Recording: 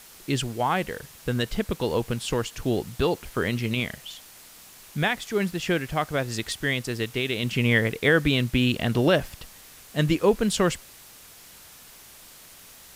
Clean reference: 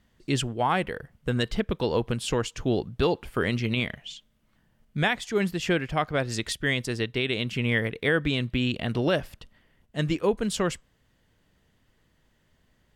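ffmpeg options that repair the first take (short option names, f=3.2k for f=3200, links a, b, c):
-af "afwtdn=0.0045,asetnsamples=n=441:p=0,asendcmd='7.43 volume volume -4dB',volume=0dB"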